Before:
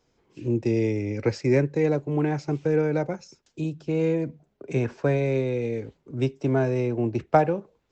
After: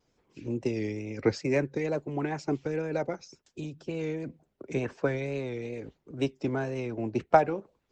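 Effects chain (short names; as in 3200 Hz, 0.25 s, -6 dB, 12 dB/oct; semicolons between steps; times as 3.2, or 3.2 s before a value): wow and flutter 76 cents; harmonic-percussive split harmonic -10 dB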